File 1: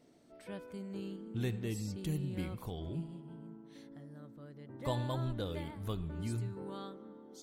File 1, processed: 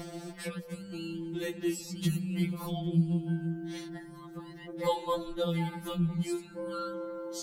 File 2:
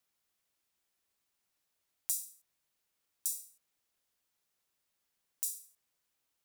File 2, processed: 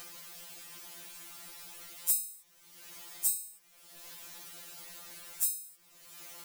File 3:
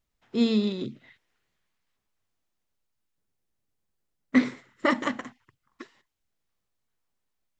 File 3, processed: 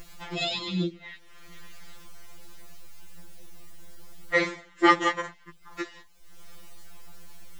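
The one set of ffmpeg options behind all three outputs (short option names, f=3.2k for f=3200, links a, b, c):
-af "acompressor=mode=upward:threshold=-32dB:ratio=2.5,afftfilt=real='re*2.83*eq(mod(b,8),0)':imag='im*2.83*eq(mod(b,8),0)':win_size=2048:overlap=0.75,volume=8.5dB"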